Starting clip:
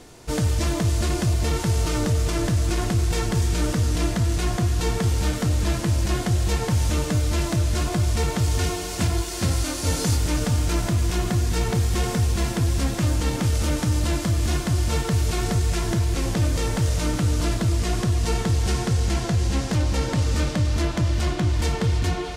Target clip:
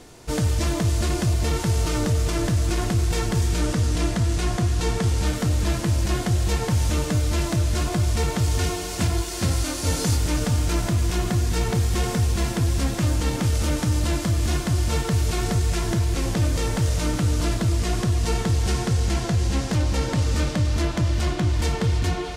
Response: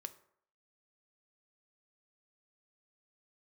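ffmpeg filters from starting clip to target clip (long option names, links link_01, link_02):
-filter_complex "[0:a]asettb=1/sr,asplit=3[link_01][link_02][link_03];[link_01]atrim=end=3.594[link_04];[link_02]atrim=start=3.59:end=5.27,asetpts=PTS-STARTPTS,afade=type=in:duration=0.004:curve=qsin,afade=type=out:start_time=1.676:duration=0.004:curve=qsin,lowpass=12000[link_05];[link_03]atrim=start=5.266[link_06];[link_04][link_05]acrossfade=duration=0.004:curve1=hsin:curve2=qsin[link_07];[link_07][link_06]acrossfade=duration=0.004:curve1=qsin:curve2=hsin"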